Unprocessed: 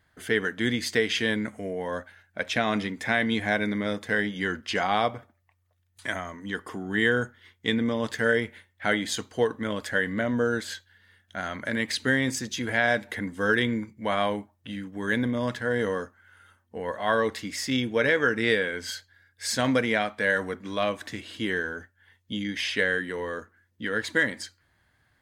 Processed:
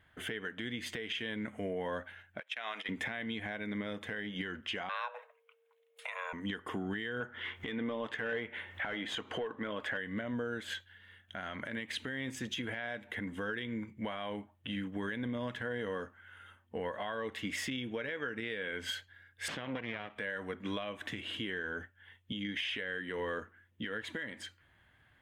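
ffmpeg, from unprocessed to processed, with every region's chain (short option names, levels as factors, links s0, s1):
-filter_complex "[0:a]asettb=1/sr,asplit=3[s0][s1][s2];[s0]atrim=end=2.404[s3];[s1]atrim=start=2.4:end=2.89,asetpts=PTS-STARTPTS,afade=t=in:d=0.004:c=qsin,afade=t=out:st=0.486:d=0.004:c=qsin,agate=range=0.112:threshold=0.0316:ratio=16:release=100:detection=peak,highpass=840,acompressor=threshold=0.0251:ratio=2.5:attack=3.2:release=140:knee=1:detection=peak[s4];[s2]atrim=start=2.886[s5];[s3][s4]acrossfade=d=0.004:c1=hsin:c2=qsin[s6];[s6][s5]acrossfade=d=0.004:c1=qsin:c2=hsin,asettb=1/sr,asplit=3[s7][s8][s9];[s7]atrim=end=4.894[s10];[s8]atrim=start=4.89:end=6.33,asetpts=PTS-STARTPTS,afade=t=in:d=0.004:c=qsin,afade=t=out:st=1.436:d=0.004:c=qsin,highpass=58,afreqshift=370[s11];[s9]atrim=start=6.326[s12];[s10][s11]acrossfade=d=0.004:c1=hsin:c2=qsin[s13];[s13][s12]acrossfade=d=0.004:c1=qsin:c2=hsin,asettb=1/sr,asplit=3[s14][s15][s16];[s14]atrim=end=7.204[s17];[s15]atrim=start=7.2:end=9.97,asetpts=PTS-STARTPTS,afade=t=in:d=0.004:c=qsin,afade=t=out:st=2.766:d=0.004:c=qsin,asplit=2[s18][s19];[s19]highpass=f=720:p=1,volume=5.62,asoftclip=type=tanh:threshold=0.335[s20];[s18][s20]amix=inputs=2:normalize=0,lowpass=f=1200:p=1,volume=0.501,acompressor=mode=upward:threshold=0.0282:ratio=2.5:attack=3.2:release=140:knee=2.83:detection=peak[s21];[s16]atrim=start=9.966[s22];[s17][s21]acrossfade=d=0.004:c1=hsin:c2=qsin[s23];[s23][s22]acrossfade=d=0.004:c1=qsin:c2=hsin,asettb=1/sr,asplit=3[s24][s25][s26];[s24]atrim=end=19.484[s27];[s25]atrim=start=19.48:end=20.16,asetpts=PTS-STARTPTS,afade=t=in:d=0.004:c=qsin,afade=t=out:st=0.676:d=0.004:c=qsin,aeval=exprs='max(val(0),0)':c=same,highpass=100,lowpass=3500[s28];[s26]atrim=start=20.156[s29];[s27][s28]acrossfade=d=0.004:c1=hsin:c2=qsin[s30];[s30][s29]acrossfade=d=0.004:c1=qsin:c2=hsin,highshelf=f=3800:t=q:w=3:g=-6,acompressor=threshold=0.0251:ratio=10,alimiter=level_in=1.33:limit=0.0631:level=0:latency=1:release=132,volume=0.75"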